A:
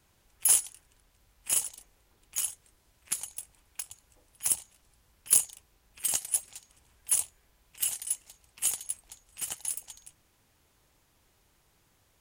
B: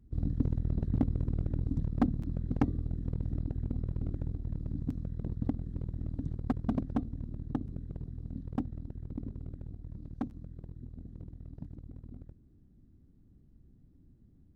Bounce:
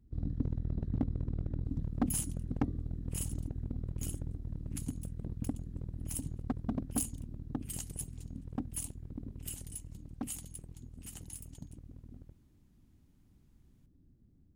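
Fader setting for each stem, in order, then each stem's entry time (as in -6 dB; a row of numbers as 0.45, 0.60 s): -14.0, -4.0 dB; 1.65, 0.00 s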